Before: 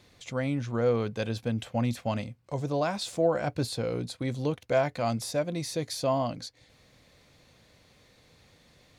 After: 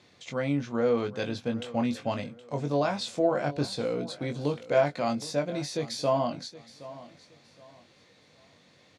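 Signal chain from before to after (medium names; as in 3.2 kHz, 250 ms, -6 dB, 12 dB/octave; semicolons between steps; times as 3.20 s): band-pass 140–7000 Hz; doubling 21 ms -5.5 dB; feedback delay 769 ms, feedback 29%, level -17.5 dB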